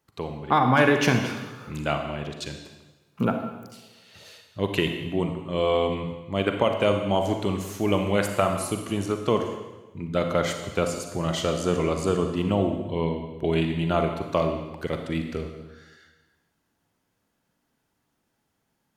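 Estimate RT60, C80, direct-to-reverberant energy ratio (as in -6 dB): 1.1 s, 7.5 dB, 4.5 dB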